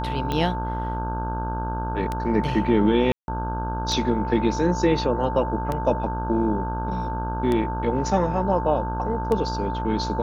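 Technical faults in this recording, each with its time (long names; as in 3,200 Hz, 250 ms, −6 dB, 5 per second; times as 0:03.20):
mains buzz 60 Hz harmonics 27 −29 dBFS
scratch tick 33 1/3 rpm −13 dBFS
whistle 890 Hz −29 dBFS
0:03.12–0:03.28: drop-out 161 ms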